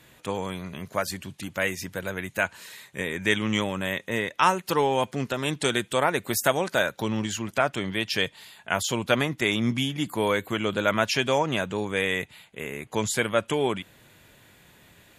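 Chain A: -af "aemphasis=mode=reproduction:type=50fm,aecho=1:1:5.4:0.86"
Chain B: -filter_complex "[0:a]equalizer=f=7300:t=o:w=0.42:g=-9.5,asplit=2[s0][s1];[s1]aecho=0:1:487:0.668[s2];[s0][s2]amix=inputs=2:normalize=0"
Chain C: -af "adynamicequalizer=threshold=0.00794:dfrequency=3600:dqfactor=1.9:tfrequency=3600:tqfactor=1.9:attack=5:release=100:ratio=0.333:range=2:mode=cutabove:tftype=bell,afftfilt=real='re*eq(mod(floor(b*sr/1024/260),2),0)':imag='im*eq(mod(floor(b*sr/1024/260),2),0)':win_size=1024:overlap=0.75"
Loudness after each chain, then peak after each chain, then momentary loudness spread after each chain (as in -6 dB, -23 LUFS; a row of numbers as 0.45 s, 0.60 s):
-24.5 LUFS, -25.5 LUFS, -30.5 LUFS; -2.0 dBFS, -4.5 dBFS, -9.0 dBFS; 10 LU, 8 LU, 11 LU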